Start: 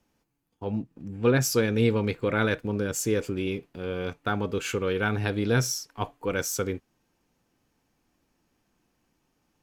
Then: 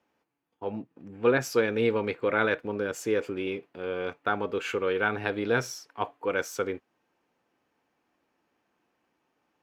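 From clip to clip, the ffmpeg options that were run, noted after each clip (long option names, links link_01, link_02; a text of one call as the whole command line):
ffmpeg -i in.wav -af "highpass=66,bass=frequency=250:gain=-14,treble=frequency=4000:gain=-14,volume=2dB" out.wav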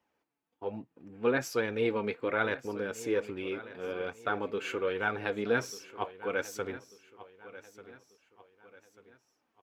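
ffmpeg -i in.wav -af "flanger=delay=1:depth=3.7:regen=52:speed=1.2:shape=sinusoidal,aecho=1:1:1191|2382|3573:0.15|0.0598|0.0239" out.wav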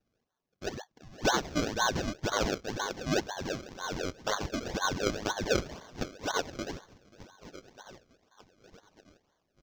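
ffmpeg -i in.wav -af "afftfilt=real='real(if(between(b,1,1012),(2*floor((b-1)/92)+1)*92-b,b),0)':imag='imag(if(between(b,1,1012),(2*floor((b-1)/92)+1)*92-b,b),0)*if(between(b,1,1012),-1,1)':win_size=2048:overlap=0.75,acrusher=samples=33:mix=1:aa=0.000001:lfo=1:lforange=33:lforate=2,highshelf=frequency=7600:width_type=q:width=3:gain=-9.5" out.wav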